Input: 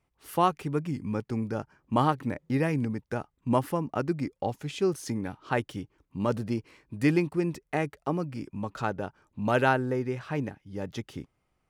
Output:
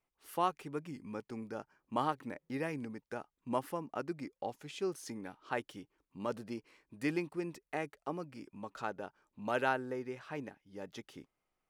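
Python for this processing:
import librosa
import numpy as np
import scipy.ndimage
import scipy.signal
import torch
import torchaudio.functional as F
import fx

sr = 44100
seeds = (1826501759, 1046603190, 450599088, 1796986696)

y = fx.peak_eq(x, sr, hz=89.0, db=-14.0, octaves=2.0)
y = y * 10.0 ** (-7.5 / 20.0)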